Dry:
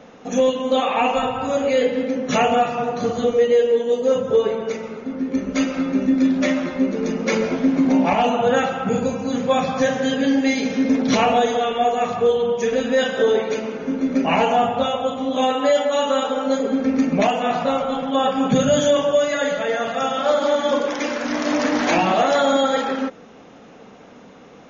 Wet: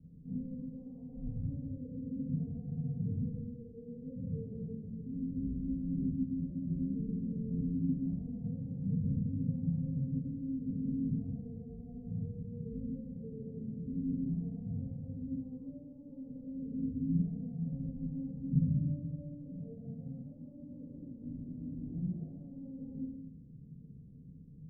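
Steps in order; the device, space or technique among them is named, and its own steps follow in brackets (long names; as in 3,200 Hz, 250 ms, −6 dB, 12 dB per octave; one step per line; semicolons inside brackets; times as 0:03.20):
club heard from the street (brickwall limiter −16.5 dBFS, peak gain reduction 9.5 dB; low-pass filter 150 Hz 24 dB per octave; convolution reverb RT60 0.75 s, pre-delay 14 ms, DRR −6 dB)
parametric band 480 Hz +3 dB
level −1.5 dB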